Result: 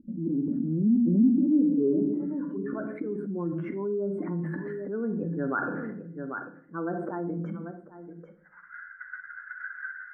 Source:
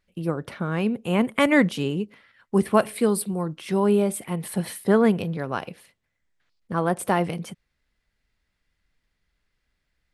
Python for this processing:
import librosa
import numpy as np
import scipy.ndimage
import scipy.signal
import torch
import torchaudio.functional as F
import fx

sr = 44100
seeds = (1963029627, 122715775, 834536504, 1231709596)

p1 = fx.spec_expand(x, sr, power=1.9)
p2 = fx.auto_swell(p1, sr, attack_ms=539.0)
p3 = fx.hum_notches(p2, sr, base_hz=60, count=5)
p4 = p3 + fx.echo_single(p3, sr, ms=791, db=-21.0, dry=0)
p5 = fx.filter_sweep_lowpass(p4, sr, from_hz=300.0, to_hz=1500.0, start_s=8.09, end_s=8.76, q=5.6)
p6 = fx.high_shelf_res(p5, sr, hz=4900.0, db=12.0, q=3.0)
p7 = fx.filter_sweep_bandpass(p6, sr, from_hz=240.0, to_hz=1500.0, start_s=1.16, end_s=2.75, q=7.6)
p8 = fx.peak_eq(p7, sr, hz=1500.0, db=13.0, octaves=1.5)
p9 = fx.room_shoebox(p8, sr, seeds[0], volume_m3=70.0, walls='mixed', distance_m=0.37)
y = fx.env_flatten(p9, sr, amount_pct=70)